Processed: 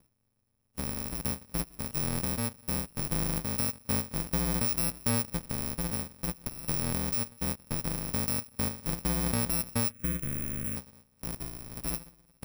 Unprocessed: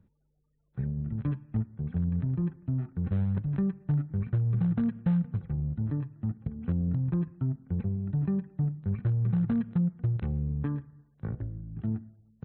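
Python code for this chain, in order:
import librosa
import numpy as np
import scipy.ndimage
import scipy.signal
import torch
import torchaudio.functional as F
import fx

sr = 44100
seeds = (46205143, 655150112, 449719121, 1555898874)

y = fx.bit_reversed(x, sr, seeds[0], block=128)
y = fx.fixed_phaser(y, sr, hz=2000.0, stages=4, at=(9.9, 10.75), fade=0.02)
y = y * np.sin(2.0 * np.pi * 63.0 * np.arange(len(y)) / sr)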